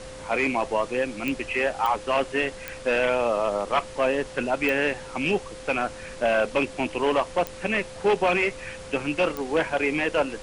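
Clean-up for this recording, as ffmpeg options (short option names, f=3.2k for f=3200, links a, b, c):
-af "adeclick=t=4,bandreject=f=520:w=30,afftdn=nr=30:nf=-40"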